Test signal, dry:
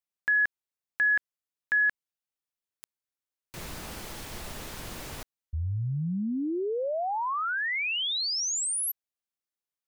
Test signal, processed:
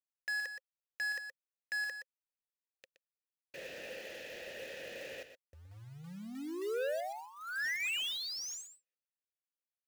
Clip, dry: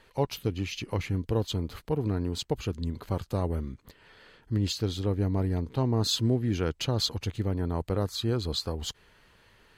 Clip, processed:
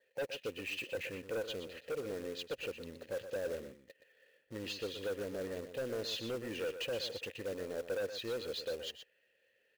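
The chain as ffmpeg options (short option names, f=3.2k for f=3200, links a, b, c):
-filter_complex "[0:a]agate=range=-12dB:threshold=-49dB:ratio=16:release=32:detection=rms,acontrast=56,adynamicequalizer=threshold=0.00501:dfrequency=2700:dqfactor=6.4:tfrequency=2700:tqfactor=6.4:attack=5:release=100:ratio=0.4:range=2.5:mode=boostabove:tftype=bell,asplit=3[a][b][c];[a]bandpass=f=530:t=q:w=8,volume=0dB[d];[b]bandpass=f=1.84k:t=q:w=8,volume=-6dB[e];[c]bandpass=f=2.48k:t=q:w=8,volume=-9dB[f];[d][e][f]amix=inputs=3:normalize=0,highshelf=f=3.9k:g=9,aresample=16000,asoftclip=type=tanh:threshold=-35.5dB,aresample=44100,acrusher=bits=3:mode=log:mix=0:aa=0.000001,aecho=1:1:121:0.316,volume=1dB"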